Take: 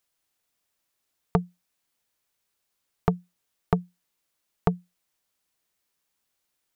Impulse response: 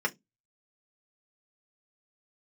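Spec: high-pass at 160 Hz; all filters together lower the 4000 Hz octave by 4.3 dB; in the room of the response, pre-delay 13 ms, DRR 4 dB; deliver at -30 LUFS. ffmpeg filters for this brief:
-filter_complex "[0:a]highpass=160,equalizer=f=4k:t=o:g=-6,asplit=2[a][b];[1:a]atrim=start_sample=2205,adelay=13[c];[b][c]afir=irnorm=-1:irlink=0,volume=-12.5dB[d];[a][d]amix=inputs=2:normalize=0"

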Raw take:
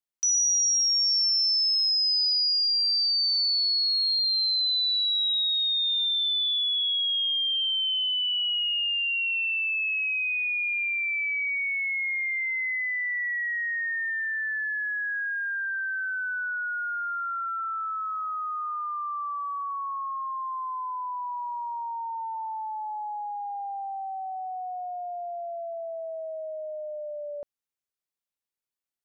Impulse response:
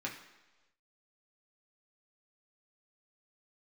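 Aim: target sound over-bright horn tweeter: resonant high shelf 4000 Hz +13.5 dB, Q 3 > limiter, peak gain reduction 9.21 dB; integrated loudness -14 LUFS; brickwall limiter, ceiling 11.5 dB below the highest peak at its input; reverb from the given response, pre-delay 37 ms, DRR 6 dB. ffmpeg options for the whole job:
-filter_complex "[0:a]alimiter=level_in=7.5dB:limit=-24dB:level=0:latency=1,volume=-7.5dB,asplit=2[a][b];[1:a]atrim=start_sample=2205,adelay=37[c];[b][c]afir=irnorm=-1:irlink=0,volume=-8dB[d];[a][d]amix=inputs=2:normalize=0,highshelf=f=4k:t=q:w=3:g=13.5,volume=10dB,alimiter=limit=-6.5dB:level=0:latency=1"

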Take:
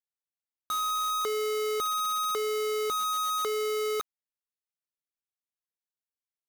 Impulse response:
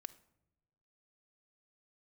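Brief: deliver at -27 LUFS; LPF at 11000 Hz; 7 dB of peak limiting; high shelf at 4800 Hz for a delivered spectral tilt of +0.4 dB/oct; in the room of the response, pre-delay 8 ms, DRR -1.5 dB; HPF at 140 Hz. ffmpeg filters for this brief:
-filter_complex "[0:a]highpass=140,lowpass=11k,highshelf=f=4.8k:g=5,alimiter=level_in=4.5dB:limit=-24dB:level=0:latency=1,volume=-4.5dB,asplit=2[a][b];[1:a]atrim=start_sample=2205,adelay=8[c];[b][c]afir=irnorm=-1:irlink=0,volume=6.5dB[d];[a][d]amix=inputs=2:normalize=0,volume=2dB"

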